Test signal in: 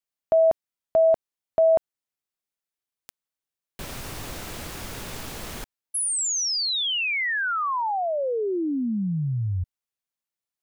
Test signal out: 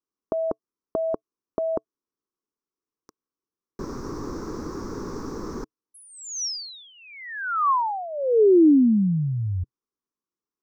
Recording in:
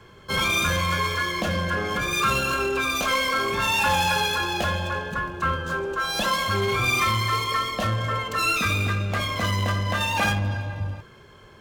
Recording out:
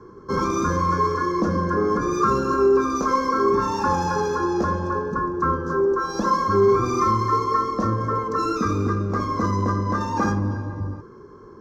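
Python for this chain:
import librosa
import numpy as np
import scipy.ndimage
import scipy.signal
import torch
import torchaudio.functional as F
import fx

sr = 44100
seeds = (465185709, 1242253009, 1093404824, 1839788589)

y = fx.curve_eq(x, sr, hz=(130.0, 310.0, 440.0, 660.0, 1100.0, 3000.0, 5700.0, 9100.0, 14000.0), db=(0, 12, 10, -9, 7, -27, -1, -24, -21))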